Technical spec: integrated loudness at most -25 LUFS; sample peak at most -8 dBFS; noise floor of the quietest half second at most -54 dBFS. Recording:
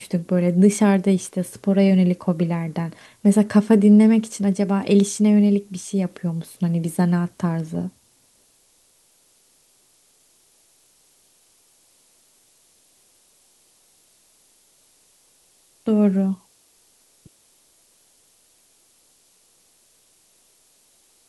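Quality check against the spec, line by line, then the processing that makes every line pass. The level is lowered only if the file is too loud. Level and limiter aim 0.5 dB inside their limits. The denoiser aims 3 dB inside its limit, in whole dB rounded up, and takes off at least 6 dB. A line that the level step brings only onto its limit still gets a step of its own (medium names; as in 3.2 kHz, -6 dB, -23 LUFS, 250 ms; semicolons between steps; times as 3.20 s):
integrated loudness -19.5 LUFS: fail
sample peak -4.0 dBFS: fail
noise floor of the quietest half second -59 dBFS: pass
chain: trim -6 dB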